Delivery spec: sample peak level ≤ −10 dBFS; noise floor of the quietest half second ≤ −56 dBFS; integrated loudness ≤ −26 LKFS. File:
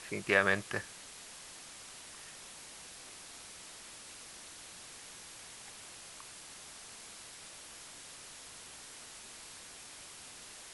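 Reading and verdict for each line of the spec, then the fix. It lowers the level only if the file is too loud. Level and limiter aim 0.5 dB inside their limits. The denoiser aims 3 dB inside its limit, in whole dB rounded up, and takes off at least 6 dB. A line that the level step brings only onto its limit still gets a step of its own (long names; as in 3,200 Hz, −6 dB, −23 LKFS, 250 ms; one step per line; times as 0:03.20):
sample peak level −11.5 dBFS: in spec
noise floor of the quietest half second −51 dBFS: out of spec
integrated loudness −41.0 LKFS: in spec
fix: broadband denoise 8 dB, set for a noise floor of −51 dBFS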